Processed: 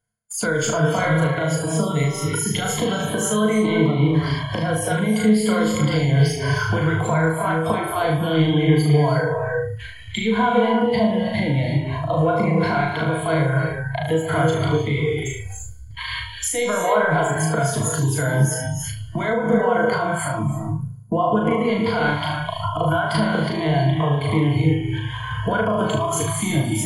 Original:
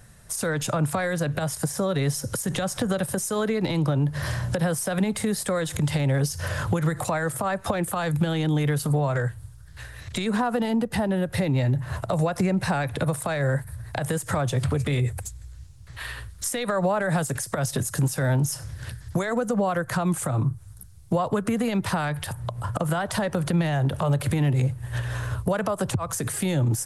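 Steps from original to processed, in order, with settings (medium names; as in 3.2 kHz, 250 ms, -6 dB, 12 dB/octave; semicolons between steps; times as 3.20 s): gate -40 dBFS, range -26 dB; gated-style reverb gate 360 ms rising, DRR 3.5 dB; reverse; upward compressor, threshold -26 dBFS; reverse; rippled EQ curve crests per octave 1.8, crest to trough 15 dB; flutter echo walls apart 6.4 m, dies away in 0.72 s; spectral noise reduction 19 dB; bass shelf 88 Hz -7.5 dB; in parallel at 0 dB: compression, threshold -27 dBFS, peak gain reduction 16 dB; on the sum: random flutter of the level, depth 50%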